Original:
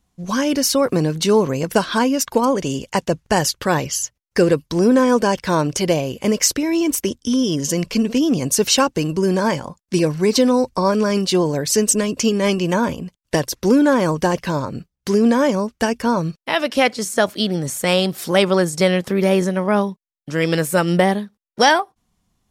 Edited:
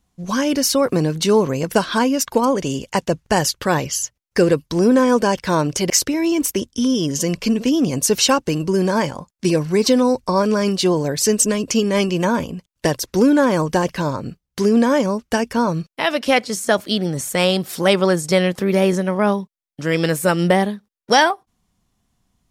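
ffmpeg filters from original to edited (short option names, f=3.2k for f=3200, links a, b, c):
-filter_complex "[0:a]asplit=2[a][b];[a]atrim=end=5.902[c];[b]atrim=start=6.388[d];[c][d]acrossfade=d=0.004:c1=hsin:c2=hsin"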